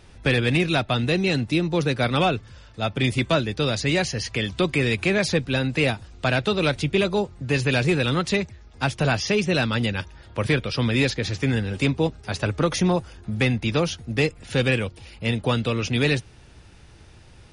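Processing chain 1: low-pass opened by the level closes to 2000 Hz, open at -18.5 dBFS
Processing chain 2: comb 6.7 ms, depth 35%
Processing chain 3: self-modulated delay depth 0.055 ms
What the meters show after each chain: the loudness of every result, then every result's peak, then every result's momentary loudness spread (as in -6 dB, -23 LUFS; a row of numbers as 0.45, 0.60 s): -23.5, -22.5, -23.5 LUFS; -9.0, -8.0, -9.0 dBFS; 6, 6, 6 LU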